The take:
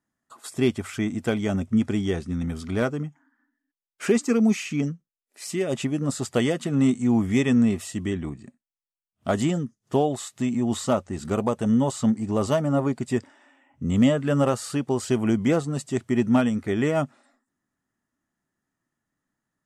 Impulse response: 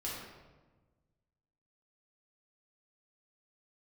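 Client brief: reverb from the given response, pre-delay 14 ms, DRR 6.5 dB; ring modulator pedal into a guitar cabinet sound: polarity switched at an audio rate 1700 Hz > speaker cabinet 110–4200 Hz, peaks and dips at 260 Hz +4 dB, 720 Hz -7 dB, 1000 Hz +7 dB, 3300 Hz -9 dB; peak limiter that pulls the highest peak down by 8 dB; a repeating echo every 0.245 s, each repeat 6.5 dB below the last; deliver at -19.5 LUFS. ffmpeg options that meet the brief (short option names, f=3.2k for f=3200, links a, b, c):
-filter_complex "[0:a]alimiter=limit=-17.5dB:level=0:latency=1,aecho=1:1:245|490|735|980|1225|1470:0.473|0.222|0.105|0.0491|0.0231|0.0109,asplit=2[a][b];[1:a]atrim=start_sample=2205,adelay=14[c];[b][c]afir=irnorm=-1:irlink=0,volume=-8.5dB[d];[a][d]amix=inputs=2:normalize=0,aeval=exprs='val(0)*sgn(sin(2*PI*1700*n/s))':c=same,highpass=110,equalizer=f=260:t=q:w=4:g=4,equalizer=f=720:t=q:w=4:g=-7,equalizer=f=1k:t=q:w=4:g=7,equalizer=f=3.3k:t=q:w=4:g=-9,lowpass=f=4.2k:w=0.5412,lowpass=f=4.2k:w=1.3066,volume=4.5dB"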